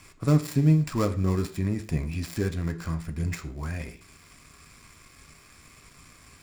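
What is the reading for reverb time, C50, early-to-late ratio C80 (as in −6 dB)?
0.50 s, 14.5 dB, 18.5 dB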